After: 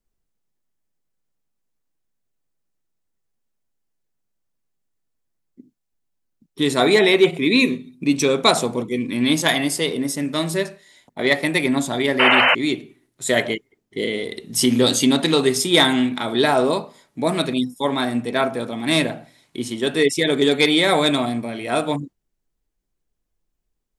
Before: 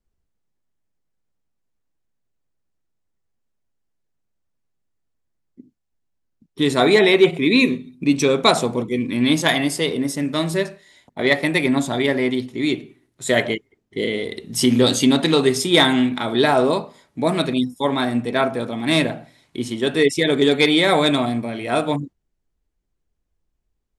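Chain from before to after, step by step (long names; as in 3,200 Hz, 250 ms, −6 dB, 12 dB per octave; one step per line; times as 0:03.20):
parametric band 69 Hz −9 dB 0.92 octaves
sound drawn into the spectrogram noise, 0:12.19–0:12.55, 460–3,100 Hz −14 dBFS
high-shelf EQ 6,100 Hz +6 dB
level −1 dB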